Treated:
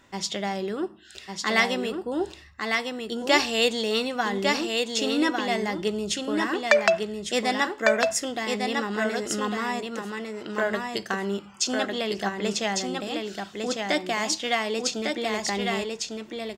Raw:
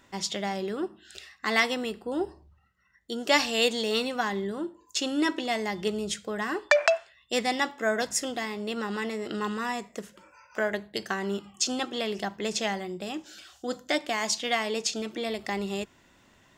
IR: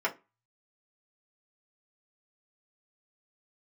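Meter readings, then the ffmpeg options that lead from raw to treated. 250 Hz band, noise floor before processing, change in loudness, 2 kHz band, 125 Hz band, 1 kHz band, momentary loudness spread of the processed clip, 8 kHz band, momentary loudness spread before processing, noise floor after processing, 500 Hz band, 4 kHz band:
+3.5 dB, -61 dBFS, +3.0 dB, +3.5 dB, +3.5 dB, +3.5 dB, 10 LU, +2.5 dB, 12 LU, -47 dBFS, +3.5 dB, +3.0 dB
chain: -af "highshelf=f=10k:g=-4,aecho=1:1:1152:0.631,volume=2dB"

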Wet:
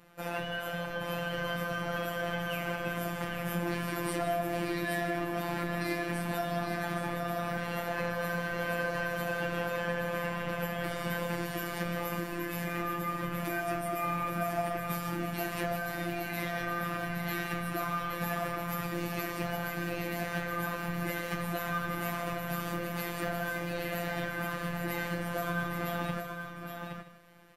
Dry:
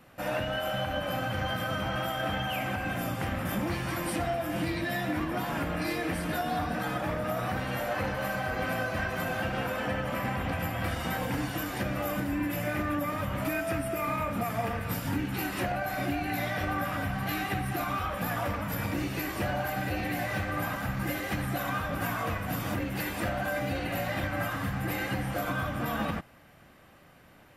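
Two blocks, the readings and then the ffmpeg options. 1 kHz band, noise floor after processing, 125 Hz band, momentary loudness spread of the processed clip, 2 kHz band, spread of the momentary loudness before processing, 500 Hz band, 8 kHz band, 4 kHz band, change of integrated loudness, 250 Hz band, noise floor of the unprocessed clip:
-2.5 dB, -40 dBFS, -4.0 dB, 3 LU, -1.5 dB, 1 LU, -1.0 dB, -2.5 dB, -3.5 dB, -2.5 dB, -3.5 dB, -56 dBFS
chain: -filter_complex "[0:a]asplit=2[a][b];[b]aecho=0:1:819:0.473[c];[a][c]amix=inputs=2:normalize=0,afftfilt=real='hypot(re,im)*cos(PI*b)':imag='0':win_size=1024:overlap=0.75,asplit=2[d][e];[e]aecho=0:1:155:0.237[f];[d][f]amix=inputs=2:normalize=0"

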